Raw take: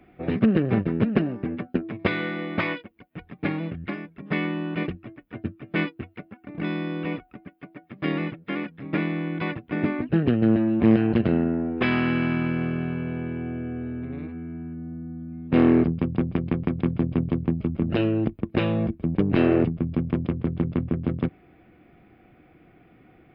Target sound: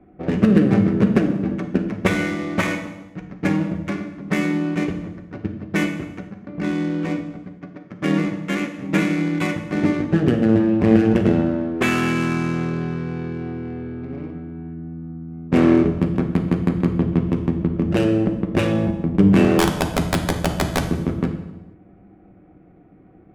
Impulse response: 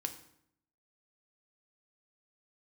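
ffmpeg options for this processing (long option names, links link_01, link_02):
-filter_complex "[0:a]asettb=1/sr,asplit=3[link_01][link_02][link_03];[link_01]atrim=end=8.394[link_04];[link_02]atrim=start=8.39:end=9.47,asetpts=PTS-STARTPTS,afade=type=in:duration=0.004:curve=qsin,afade=type=out:start_time=1.076:duration=0.004:curve=qsin,aemphasis=mode=production:type=75kf[link_05];[link_03]atrim=start=9.466[link_06];[link_04][link_05]acrossfade=duration=0.004:curve1=hsin:curve2=qsin[link_07];[link_07][link_06]acrossfade=duration=0.004:curve1=qsin:curve2=hsin,adynamicsmooth=sensitivity=6.5:basefreq=970,asettb=1/sr,asplit=3[link_08][link_09][link_10];[link_08]atrim=end=19.584[link_11];[link_09]atrim=start=19.58:end=20.85,asetpts=PTS-STARTPTS,afade=type=in:duration=0.004:curve=qsin,afade=type=out:start_time=1.266:duration=0.004:curve=qsin,aeval=exprs='(mod(5.62*val(0)+1,2)-1)/5.62':channel_layout=same[link_12];[link_10]atrim=start=20.846[link_13];[link_11][link_12]acrossfade=duration=0.004:curve1=hsin:curve2=qsin[link_14];[link_14][link_13]acrossfade=duration=0.004:curve1=qsin:curve2=hsin[link_15];[1:a]atrim=start_sample=2205,afade=type=out:start_time=0.35:duration=0.01,atrim=end_sample=15876,asetrate=26901,aresample=44100[link_16];[link_15][link_16]afir=irnorm=-1:irlink=0,volume=2.5dB"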